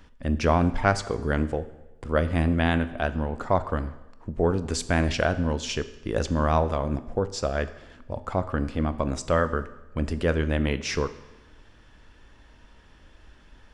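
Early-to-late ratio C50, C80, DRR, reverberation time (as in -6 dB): 14.5 dB, 16.5 dB, 11.5 dB, 1.0 s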